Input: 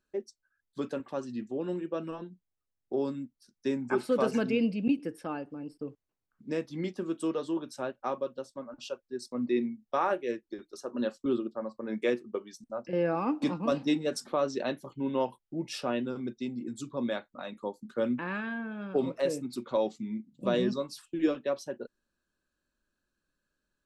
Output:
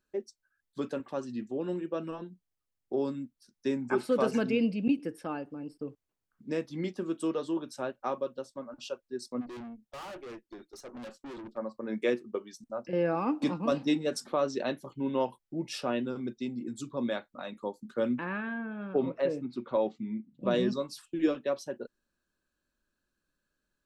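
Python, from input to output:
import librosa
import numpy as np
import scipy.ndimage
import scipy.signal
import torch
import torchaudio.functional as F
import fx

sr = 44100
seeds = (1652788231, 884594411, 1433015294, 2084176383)

y = fx.tube_stage(x, sr, drive_db=41.0, bias=0.35, at=(9.4, 11.56), fade=0.02)
y = fx.lowpass(y, sr, hz=2700.0, slope=12, at=(18.25, 20.51))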